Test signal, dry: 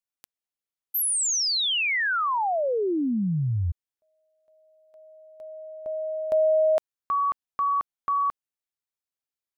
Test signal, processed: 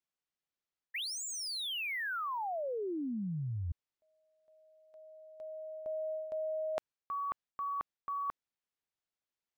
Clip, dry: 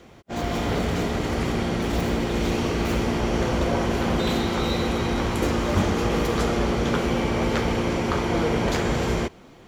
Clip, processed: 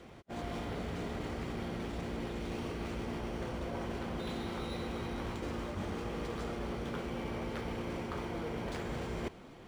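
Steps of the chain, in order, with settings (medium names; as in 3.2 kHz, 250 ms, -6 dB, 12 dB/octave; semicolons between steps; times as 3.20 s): reverse; compression 10:1, threshold -31 dBFS; reverse; decimation joined by straight lines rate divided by 3×; trim -4 dB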